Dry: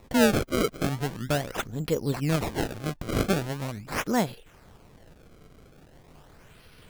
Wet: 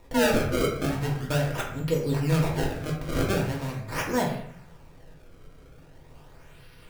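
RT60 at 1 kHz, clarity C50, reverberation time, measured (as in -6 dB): 0.65 s, 5.5 dB, 0.65 s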